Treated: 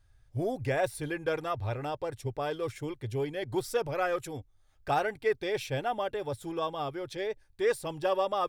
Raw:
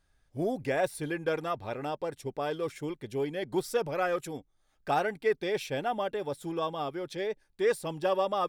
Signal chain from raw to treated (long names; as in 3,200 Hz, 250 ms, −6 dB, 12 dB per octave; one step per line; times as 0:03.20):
low shelf with overshoot 140 Hz +7.5 dB, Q 3